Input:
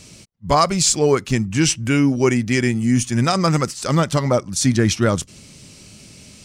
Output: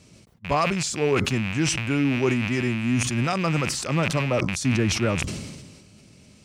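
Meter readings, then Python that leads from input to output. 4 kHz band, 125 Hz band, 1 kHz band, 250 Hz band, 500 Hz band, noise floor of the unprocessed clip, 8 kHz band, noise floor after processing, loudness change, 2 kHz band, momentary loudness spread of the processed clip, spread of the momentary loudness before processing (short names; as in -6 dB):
-5.5 dB, -5.0 dB, -7.0 dB, -5.5 dB, -6.0 dB, -45 dBFS, -8.5 dB, -53 dBFS, -5.5 dB, -1.0 dB, 5 LU, 5 LU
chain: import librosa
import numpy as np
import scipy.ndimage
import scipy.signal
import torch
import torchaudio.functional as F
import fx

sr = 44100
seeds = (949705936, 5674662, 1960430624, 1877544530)

y = fx.rattle_buzz(x, sr, strikes_db=-32.0, level_db=-11.0)
y = scipy.signal.sosfilt(scipy.signal.butter(2, 49.0, 'highpass', fs=sr, output='sos'), y)
y = fx.high_shelf(y, sr, hz=2700.0, db=-9.0)
y = fx.sustainer(y, sr, db_per_s=39.0)
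y = y * 10.0 ** (-6.5 / 20.0)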